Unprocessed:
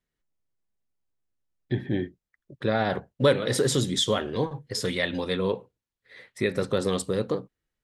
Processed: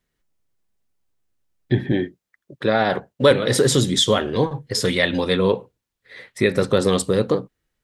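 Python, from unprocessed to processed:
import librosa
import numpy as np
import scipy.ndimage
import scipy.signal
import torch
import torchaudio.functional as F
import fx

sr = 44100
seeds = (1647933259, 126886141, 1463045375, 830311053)

p1 = fx.rider(x, sr, range_db=10, speed_s=2.0)
p2 = x + F.gain(torch.from_numpy(p1), 2.5).numpy()
y = fx.highpass(p2, sr, hz=210.0, slope=6, at=(1.92, 3.31))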